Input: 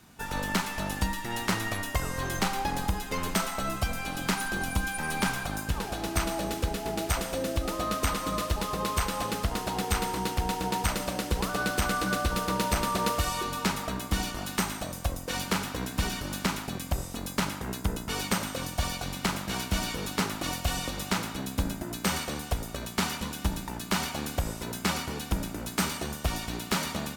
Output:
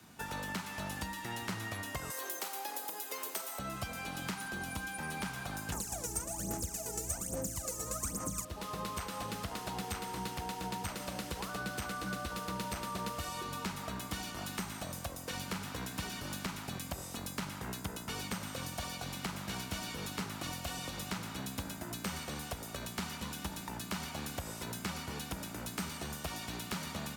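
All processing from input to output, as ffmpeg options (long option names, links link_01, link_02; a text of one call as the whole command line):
ffmpeg -i in.wav -filter_complex "[0:a]asettb=1/sr,asplit=3[link_01][link_02][link_03];[link_01]atrim=end=2.104[link_04];[link_02]atrim=start=2.1:end=3.59,asetpts=PTS-STARTPTS,afade=type=in:duration=0.004:curve=qsin,afade=type=out:start_time=1.486:duration=0.004:curve=qsin,highpass=frequency=340:width=0.5412,highpass=frequency=340:width=1.3066,aemphasis=mode=production:type=bsi[link_05];[link_03]atrim=start=3.586[link_06];[link_04][link_05]acrossfade=duration=0.004:curve1=hsin:curve2=qsin[link_07];[link_07][link_06]acrossfade=duration=0.004:curve1=qsin:curve2=hsin,asettb=1/sr,asplit=3[link_08][link_09][link_10];[link_08]atrim=end=5.724[link_11];[link_09]atrim=start=5.72:end=8.45,asetpts=PTS-STARTPTS,afade=type=in:duration=0.004:curve=qsin,afade=type=out:start_time=2.726:duration=0.004:curve=qsin,highshelf=frequency=5100:width_type=q:width=3:gain=11.5,aphaser=in_gain=1:out_gain=1:delay=2.3:decay=0.79:speed=1.2:type=sinusoidal,aeval=exprs='val(0)+0.0178*(sin(2*PI*60*n/s)+sin(2*PI*2*60*n/s)/2+sin(2*PI*3*60*n/s)/3+sin(2*PI*4*60*n/s)/4+sin(2*PI*5*60*n/s)/5)':channel_layout=same[link_12];[link_10]atrim=start=8.446[link_13];[link_11][link_12]acrossfade=duration=0.004:curve1=hsin:curve2=qsin[link_14];[link_14][link_13]acrossfade=duration=0.004:curve1=qsin:curve2=hsin,acrossover=split=170|670[link_15][link_16][link_17];[link_15]acompressor=threshold=-38dB:ratio=4[link_18];[link_16]acompressor=threshold=-46dB:ratio=4[link_19];[link_17]acompressor=threshold=-39dB:ratio=4[link_20];[link_18][link_19][link_20]amix=inputs=3:normalize=0,highpass=76,volume=-1.5dB" out.wav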